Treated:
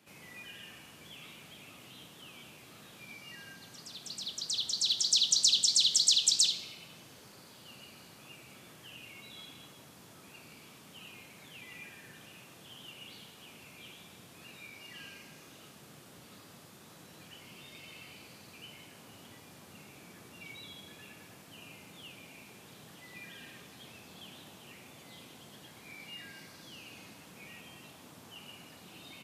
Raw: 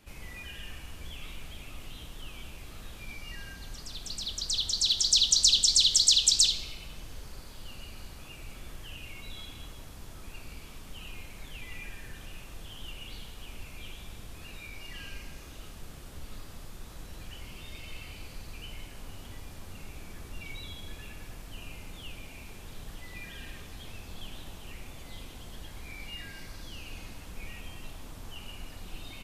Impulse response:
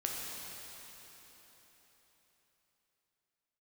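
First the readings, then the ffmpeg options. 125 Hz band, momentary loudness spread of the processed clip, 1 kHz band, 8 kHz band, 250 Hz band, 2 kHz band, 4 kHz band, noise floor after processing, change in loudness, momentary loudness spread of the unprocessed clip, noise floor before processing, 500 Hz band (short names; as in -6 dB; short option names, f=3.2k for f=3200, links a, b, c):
-11.0 dB, 23 LU, -3.5 dB, -3.5 dB, -3.5 dB, -3.5 dB, -3.5 dB, -55 dBFS, -3.0 dB, 23 LU, -47 dBFS, -3.5 dB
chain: -af "highpass=f=130:w=0.5412,highpass=f=130:w=1.3066,volume=-3.5dB"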